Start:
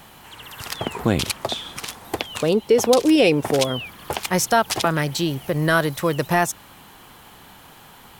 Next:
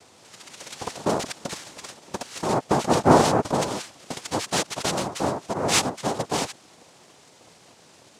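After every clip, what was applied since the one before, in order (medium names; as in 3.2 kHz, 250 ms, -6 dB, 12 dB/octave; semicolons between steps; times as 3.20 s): small resonant body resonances 280/1500/2800 Hz, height 10 dB, ringing for 25 ms; noise-vocoded speech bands 2; trim -8.5 dB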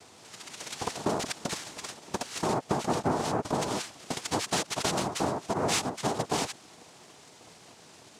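band-stop 540 Hz, Q 12; compression 16:1, threshold -24 dBFS, peak gain reduction 15.5 dB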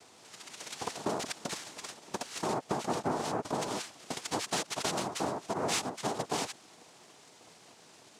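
high-pass 160 Hz 6 dB/octave; trim -3.5 dB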